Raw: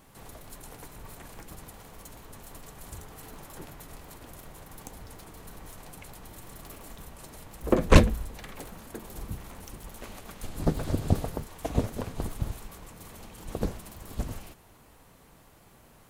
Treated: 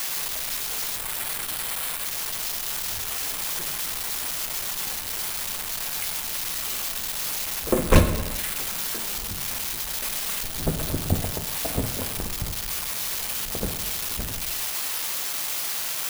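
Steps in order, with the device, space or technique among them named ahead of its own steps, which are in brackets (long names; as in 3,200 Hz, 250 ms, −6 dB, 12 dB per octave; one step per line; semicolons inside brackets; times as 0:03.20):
mains-hum notches 60/120/180/240/300 Hz
0:00.97–0:02.07: Chebyshev low-pass filter 7,400 Hz, order 10
budget class-D amplifier (gap after every zero crossing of 0.1 ms; spike at every zero crossing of −13 dBFS)
reverb whose tail is shaped and stops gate 420 ms falling, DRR 6.5 dB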